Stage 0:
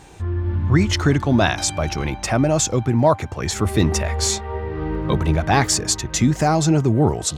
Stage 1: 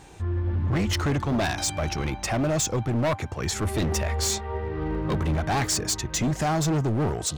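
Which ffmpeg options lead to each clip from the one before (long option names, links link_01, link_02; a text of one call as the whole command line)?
ffmpeg -i in.wav -af "asoftclip=type=hard:threshold=-17.5dB,volume=-3.5dB" out.wav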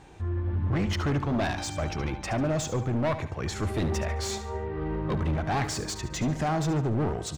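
ffmpeg -i in.wav -filter_complex "[0:a]highshelf=frequency=5600:gain=-12,asplit=2[link_01][link_02];[link_02]aecho=0:1:72|144|216|288:0.251|0.1|0.0402|0.0161[link_03];[link_01][link_03]amix=inputs=2:normalize=0,volume=-2.5dB" out.wav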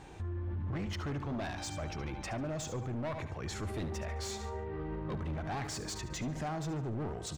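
ffmpeg -i in.wav -af "alimiter=level_in=8dB:limit=-24dB:level=0:latency=1:release=81,volume=-8dB" out.wav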